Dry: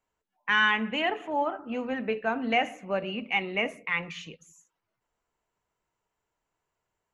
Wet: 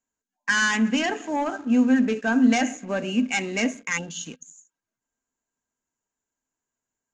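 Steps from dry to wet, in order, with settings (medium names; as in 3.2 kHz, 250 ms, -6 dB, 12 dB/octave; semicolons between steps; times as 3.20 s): time-frequency box 3.98–4.25 s, 910–2700 Hz -25 dB; waveshaping leveller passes 2; resonant low-pass 6.8 kHz, resonance Q 8.9; small resonant body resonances 250/1600 Hz, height 16 dB, ringing for 75 ms; trim -5.5 dB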